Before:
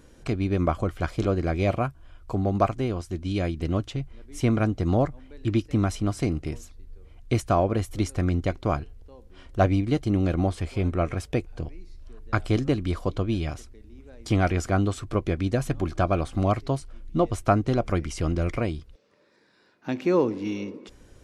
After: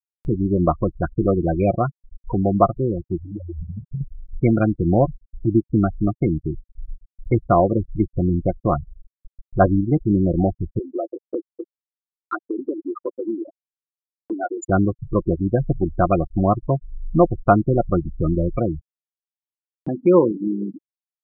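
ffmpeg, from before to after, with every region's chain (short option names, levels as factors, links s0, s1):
-filter_complex "[0:a]asettb=1/sr,asplit=3[s0][s1][s2];[s0]atrim=end=3.214[s3];[s1]atrim=start=3.21:end=4.01,asetpts=PTS-STARTPTS,afade=t=in:d=0.004:c=qsin,afade=t=out:st=0.796:d=0.004:c=qsin,aeval=exprs='val(0)+0.5*0.0133*sgn(val(0))':c=same,bandreject=f=60:t=h:w=6,bandreject=f=120:t=h:w=6,bandreject=f=180:t=h:w=6,bandreject=f=240:t=h:w=6,bandreject=f=300:t=h:w=6,bandreject=f=360:t=h:w=6,acompressor=threshold=0.0224:ratio=12:attack=3.2:release=140:knee=1:detection=peak[s4];[s2]atrim=start=4.006[s5];[s3][s4]acrossfade=d=0.004:c1=hsin:c2=qsin[s6];[s6][s5]acrossfade=d=0.004:c1=qsin:c2=hsin,asettb=1/sr,asplit=3[s7][s8][s9];[s7]atrim=end=10.794[s10];[s8]atrim=start=10.79:end=14.68,asetpts=PTS-STARTPTS,afade=t=in:d=0.004:c=qsin,afade=t=out:st=3.886:d=0.004:c=qsin,acompressor=threshold=0.0631:ratio=4:attack=3.2:release=140:knee=1:detection=peak,highpass=f=280:w=0.5412,highpass=f=280:w=1.3066,aecho=1:1:614:0.112,atrim=end_sample=171549[s11];[s9]atrim=start=14.676[s12];[s10][s11]acrossfade=d=0.004:c1=hsin:c2=qsin[s13];[s13][s12]acrossfade=d=0.004:c1=qsin:c2=hsin,afftfilt=real='re*gte(hypot(re,im),0.1)':imag='im*gte(hypot(re,im),0.1)':win_size=1024:overlap=0.75,aecho=1:1:5.7:0.4,acompressor=mode=upward:threshold=0.0501:ratio=2.5,volume=1.88"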